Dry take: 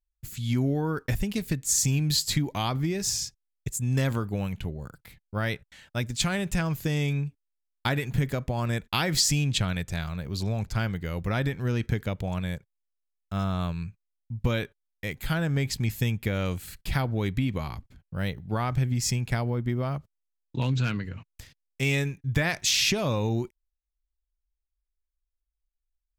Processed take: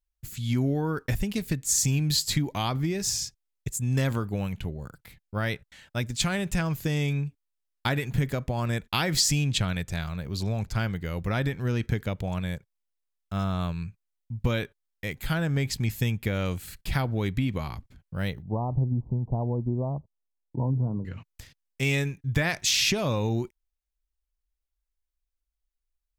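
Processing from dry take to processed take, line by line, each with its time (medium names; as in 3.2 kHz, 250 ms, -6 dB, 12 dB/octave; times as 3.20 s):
18.42–21.05 s: steep low-pass 1 kHz 72 dB/octave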